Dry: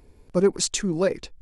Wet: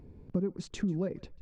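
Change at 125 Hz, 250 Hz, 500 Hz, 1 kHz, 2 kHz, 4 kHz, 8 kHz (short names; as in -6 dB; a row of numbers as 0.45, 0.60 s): -4.0, -6.0, -14.0, -17.5, -15.0, -19.0, -25.0 dB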